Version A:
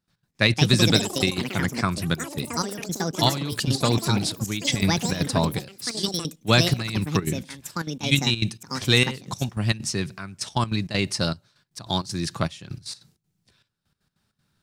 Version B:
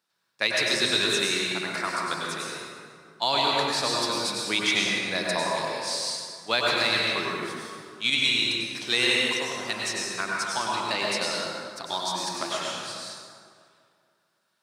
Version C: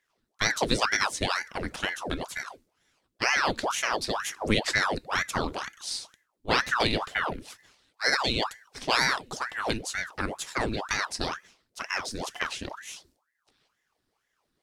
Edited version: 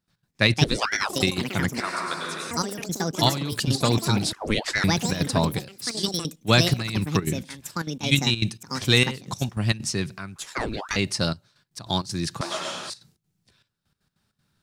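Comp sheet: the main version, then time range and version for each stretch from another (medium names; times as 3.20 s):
A
0.64–1.09 s: from C
1.80–2.51 s: from B
4.33–4.84 s: from C
10.36–10.96 s: from C
12.41–12.90 s: from B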